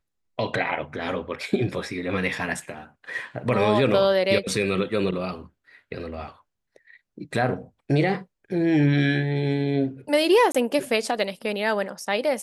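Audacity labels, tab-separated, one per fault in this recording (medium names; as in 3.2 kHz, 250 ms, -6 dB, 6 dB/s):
10.520000	10.540000	dropout 25 ms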